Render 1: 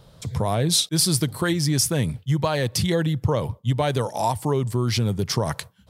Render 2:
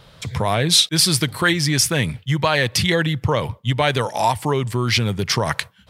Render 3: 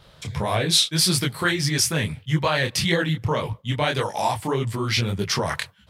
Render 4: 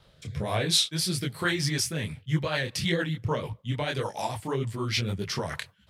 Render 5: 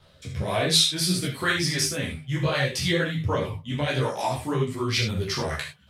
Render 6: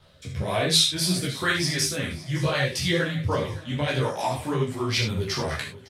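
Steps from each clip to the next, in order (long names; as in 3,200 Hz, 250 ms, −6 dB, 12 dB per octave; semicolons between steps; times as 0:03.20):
parametric band 2,200 Hz +11.5 dB 2 octaves; level +1 dB
micro pitch shift up and down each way 59 cents
rotating-speaker cabinet horn 1.1 Hz, later 6.7 Hz, at 0:01.74; level −4 dB
mains-hum notches 50/100/150 Hz; reverb whose tail is shaped and stops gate 100 ms flat, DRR 2.5 dB; multi-voice chorus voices 2, 0.6 Hz, delay 13 ms, depth 2.8 ms; level +5 dB
repeating echo 561 ms, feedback 55%, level −19 dB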